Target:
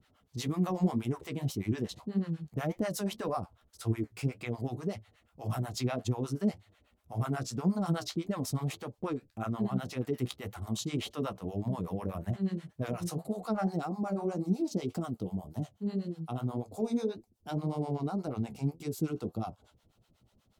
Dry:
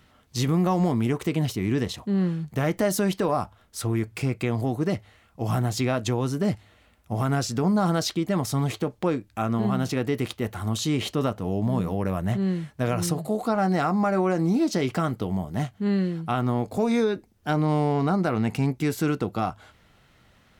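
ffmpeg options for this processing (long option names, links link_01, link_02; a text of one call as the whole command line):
ffmpeg -i in.wav -filter_complex "[0:a]asetnsamples=nb_out_samples=441:pad=0,asendcmd='13.66 equalizer g -14.5',equalizer=frequency=1800:width=1.1:gain=-3.5,flanger=delay=8.4:depth=8.4:regen=51:speed=1.8:shape=triangular,acrossover=split=600[link_01][link_02];[link_01]aeval=exprs='val(0)*(1-1/2+1/2*cos(2*PI*8.2*n/s))':channel_layout=same[link_03];[link_02]aeval=exprs='val(0)*(1-1/2-1/2*cos(2*PI*8.2*n/s))':channel_layout=same[link_04];[link_03][link_04]amix=inputs=2:normalize=0" out.wav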